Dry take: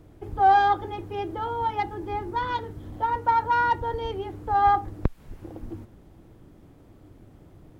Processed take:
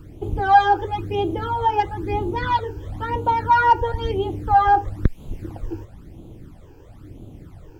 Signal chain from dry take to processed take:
in parallel at 0 dB: brickwall limiter −18 dBFS, peak gain reduction 11.5 dB
on the sum: all-pass phaser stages 12, 1 Hz, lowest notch 200–1,800 Hz
level +3.5 dB

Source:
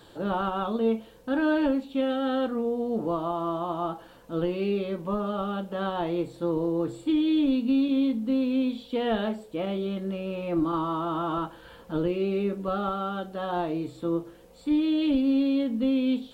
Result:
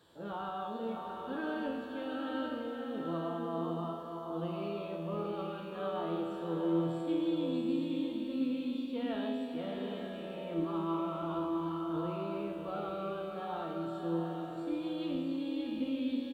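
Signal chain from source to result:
high-pass filter 61 Hz
tuned comb filter 83 Hz, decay 1.5 s, harmonics all, mix 90%
single-tap delay 629 ms −11 dB
slow-attack reverb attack 880 ms, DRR 3 dB
level +3.5 dB

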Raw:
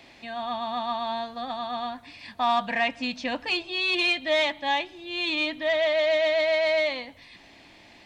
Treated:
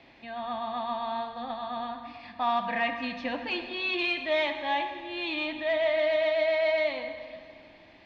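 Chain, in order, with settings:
high-frequency loss of the air 210 metres
dense smooth reverb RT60 2.2 s, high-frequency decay 0.8×, DRR 6 dB
level −2.5 dB

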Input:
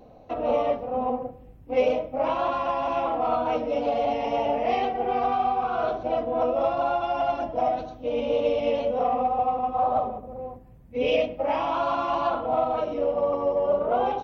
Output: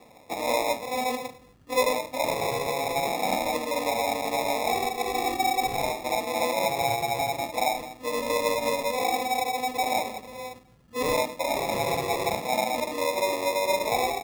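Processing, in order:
high-pass filter 190 Hz 6 dB per octave
decimation without filtering 29×
level −1.5 dB

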